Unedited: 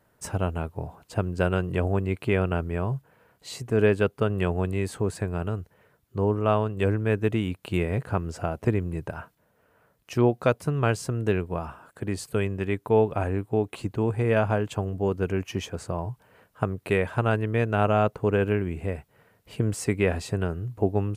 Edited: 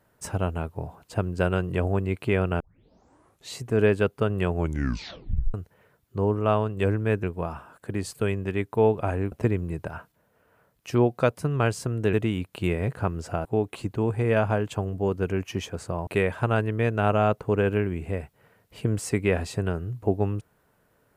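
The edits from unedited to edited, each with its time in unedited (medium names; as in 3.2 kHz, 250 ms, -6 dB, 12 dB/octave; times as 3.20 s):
2.60 s: tape start 0.92 s
4.53 s: tape stop 1.01 s
7.23–8.55 s: swap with 11.36–13.45 s
16.07–16.82 s: delete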